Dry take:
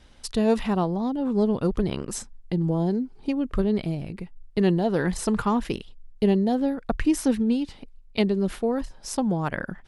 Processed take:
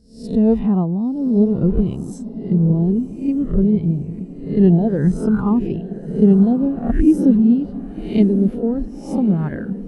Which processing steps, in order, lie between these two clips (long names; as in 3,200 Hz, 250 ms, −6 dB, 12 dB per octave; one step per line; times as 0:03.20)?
peak hold with a rise ahead of every peak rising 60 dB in 0.72 s
high-pass filter 47 Hz 6 dB per octave
low-shelf EQ 250 Hz +12 dB
on a send: feedback delay with all-pass diffusion 1,080 ms, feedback 62%, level −9 dB
on the sum: every bin expanded away from the loudest bin 1.5 to 1